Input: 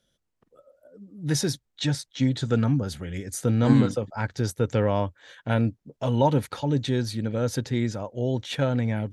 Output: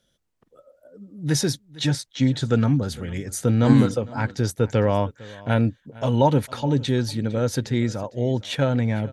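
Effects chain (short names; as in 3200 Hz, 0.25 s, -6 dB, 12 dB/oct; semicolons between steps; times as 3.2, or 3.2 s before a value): echo 0.455 s -21 dB; gain +3 dB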